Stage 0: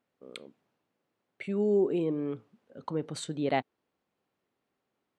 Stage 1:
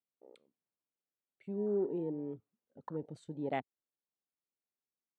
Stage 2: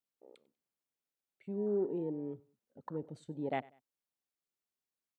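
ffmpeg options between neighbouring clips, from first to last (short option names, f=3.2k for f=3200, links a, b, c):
-af "afwtdn=0.0126,volume=-7.5dB"
-af "aecho=1:1:96|192:0.0708|0.0227"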